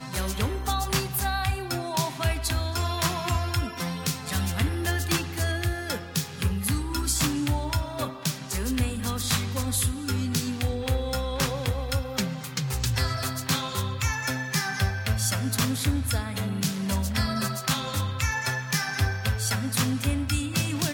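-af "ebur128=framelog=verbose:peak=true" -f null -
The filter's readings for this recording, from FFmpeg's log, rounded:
Integrated loudness:
  I:         -27.3 LUFS
  Threshold: -37.3 LUFS
Loudness range:
  LRA:         1.3 LU
  Threshold: -47.3 LUFS
  LRA low:   -27.9 LUFS
  LRA high:  -26.6 LUFS
True peak:
  Peak:      -11.8 dBFS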